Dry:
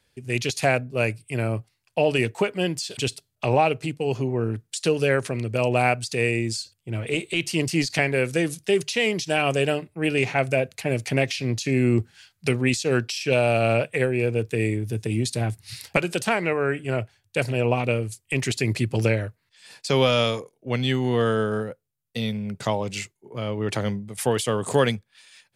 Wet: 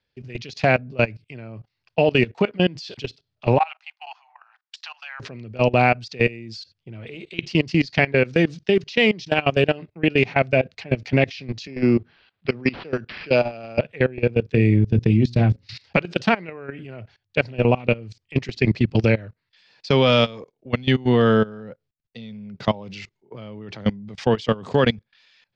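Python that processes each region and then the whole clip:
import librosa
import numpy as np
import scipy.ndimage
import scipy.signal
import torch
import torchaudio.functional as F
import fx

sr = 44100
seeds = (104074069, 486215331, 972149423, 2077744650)

y = fx.chain(x, sr, fx.steep_highpass(hz=760.0, slope=72),
    fx.high_shelf(hz=2400.0, db=-9.0), at=(3.58, 5.2))
y = fx.chain(y, sr, fx.highpass(hz=62.0, slope=24),
    fx.low_shelf(hz=160.0, db=-11.0),
    fx.resample_linear(factor=6), at=(11.67, 13.79))
y = fx.chain(y, sr, fx.low_shelf(hz=180.0, db=9.5),
    fx.hum_notches(base_hz=60, count=9), at=(14.54, 15.67))
y = scipy.signal.sosfilt(scipy.signal.butter(6, 5300.0, 'lowpass', fs=sr, output='sos'), y)
y = fx.dynamic_eq(y, sr, hz=200.0, q=2.0, threshold_db=-39.0, ratio=4.0, max_db=6)
y = fx.level_steps(y, sr, step_db=21)
y = F.gain(torch.from_numpy(y), 5.5).numpy()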